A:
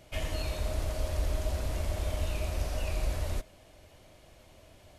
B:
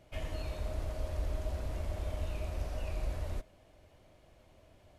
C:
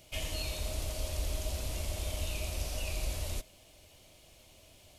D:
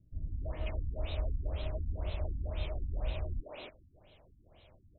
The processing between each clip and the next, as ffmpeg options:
-af "highshelf=f=2.7k:g=-8,volume=-4.5dB"
-af "aexciter=amount=4.9:drive=4.1:freq=2.4k"
-filter_complex "[0:a]acrossover=split=260|2000[a][b][c];[b]adelay=280[d];[c]adelay=540[e];[a][d][e]amix=inputs=3:normalize=0,afftfilt=real='re*lt(b*sr/1024,290*pow(4200/290,0.5+0.5*sin(2*PI*2*pts/sr)))':imag='im*lt(b*sr/1024,290*pow(4200/290,0.5+0.5*sin(2*PI*2*pts/sr)))':win_size=1024:overlap=0.75,volume=1dB"

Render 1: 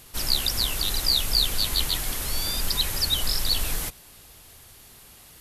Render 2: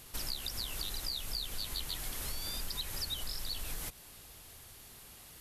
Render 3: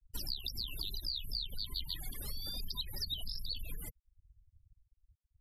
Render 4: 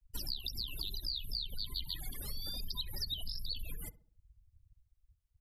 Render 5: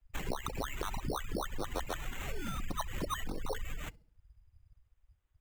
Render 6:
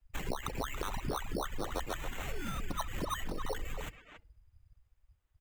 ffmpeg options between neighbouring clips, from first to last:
-af "acompressor=threshold=-31dB:ratio=6,volume=-4dB"
-af "afftfilt=real='re*gte(hypot(re,im),0.0112)':imag='im*gte(hypot(re,im),0.0112)':win_size=1024:overlap=0.75,aeval=exprs='0.0631*(cos(1*acos(clip(val(0)/0.0631,-1,1)))-cos(1*PI/2))+0.00282*(cos(3*acos(clip(val(0)/0.0631,-1,1)))-cos(3*PI/2))':c=same,volume=1dB"
-filter_complex "[0:a]asplit=2[a][b];[b]adelay=67,lowpass=f=1.2k:p=1,volume=-15.5dB,asplit=2[c][d];[d]adelay=67,lowpass=f=1.2k:p=1,volume=0.48,asplit=2[e][f];[f]adelay=67,lowpass=f=1.2k:p=1,volume=0.48,asplit=2[g][h];[h]adelay=67,lowpass=f=1.2k:p=1,volume=0.48[i];[a][c][e][g][i]amix=inputs=5:normalize=0"
-af "acrusher=samples=9:mix=1:aa=0.000001,volume=2.5dB"
-filter_complex "[0:a]asplit=2[a][b];[b]adelay=280,highpass=300,lowpass=3.4k,asoftclip=type=hard:threshold=-30dB,volume=-7dB[c];[a][c]amix=inputs=2:normalize=0"

